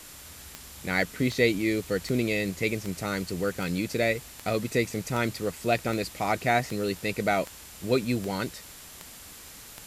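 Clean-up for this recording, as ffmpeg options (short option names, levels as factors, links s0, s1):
-af "adeclick=t=4,bandreject=f=7300:w=30,afwtdn=0.0056"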